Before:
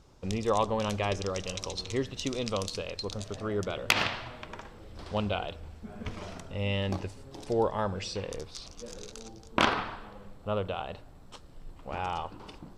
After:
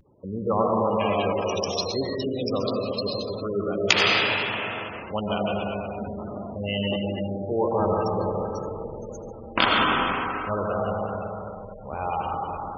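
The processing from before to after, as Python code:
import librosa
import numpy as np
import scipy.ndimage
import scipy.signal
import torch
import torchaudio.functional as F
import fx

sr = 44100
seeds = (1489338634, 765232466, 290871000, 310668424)

y = fx.wiener(x, sr, points=15)
y = 10.0 ** (-14.5 / 20.0) * np.tanh(y / 10.0 ** (-14.5 / 20.0))
y = fx.rev_freeverb(y, sr, rt60_s=3.6, hf_ratio=0.6, predelay_ms=55, drr_db=-3.5)
y = fx.spec_gate(y, sr, threshold_db=-20, keep='strong')
y = fx.highpass(y, sr, hz=fx.steps((0.0, 120.0), (7.8, 43.0)), slope=12)
y = fx.high_shelf(y, sr, hz=2300.0, db=11.5)
y = fx.vibrato(y, sr, rate_hz=0.47, depth_cents=30.0)
y = y * 10.0 ** (2.0 / 20.0)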